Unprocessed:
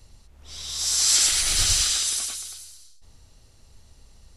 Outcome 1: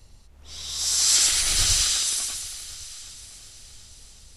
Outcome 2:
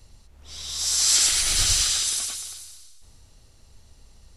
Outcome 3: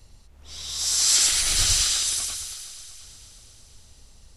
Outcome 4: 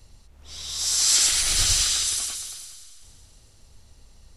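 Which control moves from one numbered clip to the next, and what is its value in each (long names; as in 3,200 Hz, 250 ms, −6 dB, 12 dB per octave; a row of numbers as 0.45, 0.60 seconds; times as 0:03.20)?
echo machine with several playback heads, delay time: 369, 90, 237, 139 milliseconds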